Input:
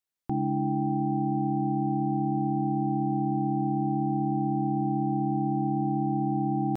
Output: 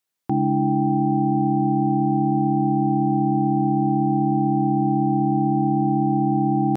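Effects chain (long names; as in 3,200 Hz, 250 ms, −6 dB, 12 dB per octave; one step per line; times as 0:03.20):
high-pass filter 100 Hz
level +7.5 dB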